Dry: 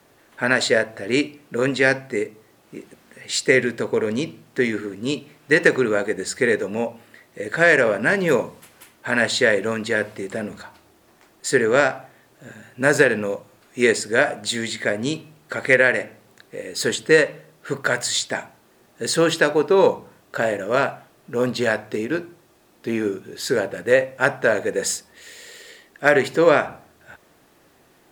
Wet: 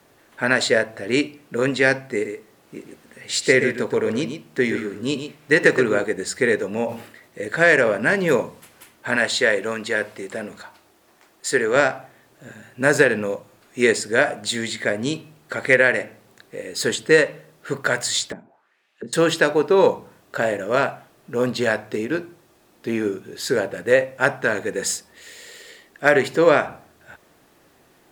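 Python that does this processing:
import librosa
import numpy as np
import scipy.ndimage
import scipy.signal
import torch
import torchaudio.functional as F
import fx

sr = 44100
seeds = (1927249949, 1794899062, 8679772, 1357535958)

y = fx.echo_single(x, sr, ms=123, db=-8.5, at=(2.05, 6.04))
y = fx.sustainer(y, sr, db_per_s=100.0, at=(6.78, 7.48))
y = fx.low_shelf(y, sr, hz=250.0, db=-8.5, at=(9.16, 11.76))
y = fx.auto_wah(y, sr, base_hz=200.0, top_hz=3200.0, q=2.1, full_db=-25.0, direction='down', at=(18.32, 19.13))
y = fx.peak_eq(y, sr, hz=590.0, db=-7.5, octaves=0.51, at=(24.41, 24.88))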